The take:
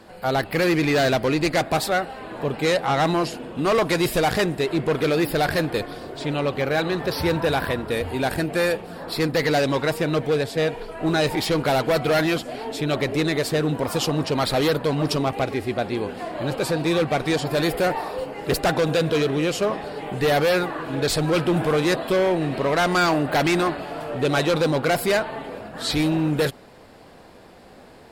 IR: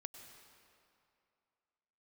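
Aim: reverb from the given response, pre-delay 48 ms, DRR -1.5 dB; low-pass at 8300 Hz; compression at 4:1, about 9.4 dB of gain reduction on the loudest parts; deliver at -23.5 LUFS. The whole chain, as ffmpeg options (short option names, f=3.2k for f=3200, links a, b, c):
-filter_complex "[0:a]lowpass=8.3k,acompressor=threshold=-29dB:ratio=4,asplit=2[a][b];[1:a]atrim=start_sample=2205,adelay=48[c];[b][c]afir=irnorm=-1:irlink=0,volume=6dB[d];[a][d]amix=inputs=2:normalize=0,volume=3.5dB"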